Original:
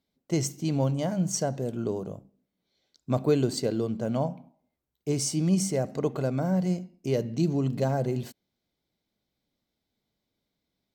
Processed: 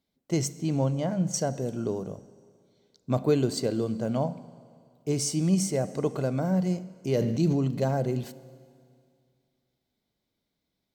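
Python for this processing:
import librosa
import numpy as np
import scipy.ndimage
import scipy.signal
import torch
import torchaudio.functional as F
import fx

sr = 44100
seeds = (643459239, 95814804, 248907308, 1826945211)

y = fx.high_shelf(x, sr, hz=5200.0, db=-11.5, at=(0.48, 1.34))
y = fx.rev_schroeder(y, sr, rt60_s=2.3, comb_ms=32, drr_db=17.0)
y = fx.sustainer(y, sr, db_per_s=27.0, at=(7.11, 7.65))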